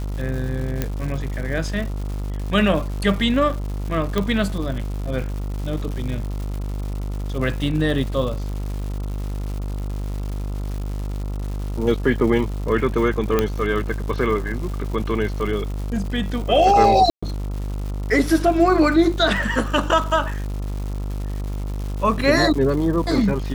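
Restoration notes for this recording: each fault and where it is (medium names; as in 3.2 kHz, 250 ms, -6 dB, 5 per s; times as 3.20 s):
buzz 50 Hz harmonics 28 -26 dBFS
crackle 270 per s -30 dBFS
0.82 s: pop -8 dBFS
4.18 s: pop -8 dBFS
13.39 s: pop -5 dBFS
17.10–17.23 s: dropout 125 ms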